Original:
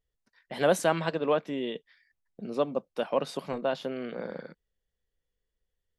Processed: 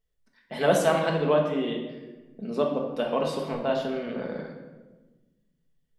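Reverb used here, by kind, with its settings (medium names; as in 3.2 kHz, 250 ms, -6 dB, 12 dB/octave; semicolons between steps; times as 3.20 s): simulated room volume 760 m³, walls mixed, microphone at 1.5 m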